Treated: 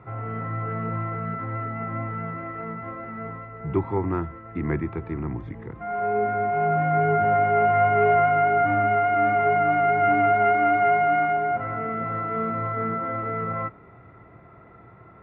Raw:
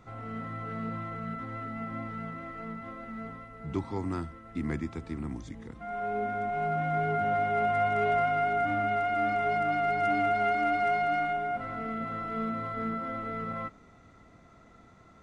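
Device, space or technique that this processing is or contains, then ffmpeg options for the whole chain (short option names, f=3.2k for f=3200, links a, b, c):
bass cabinet: -af "highpass=64,equalizer=f=120:t=q:w=4:g=7,equalizer=f=240:t=q:w=4:g=-8,equalizer=f=380:t=q:w=4:g=5,equalizer=f=940:t=q:w=4:g=3,lowpass=f=2.3k:w=0.5412,lowpass=f=2.3k:w=1.3066,volume=7dB"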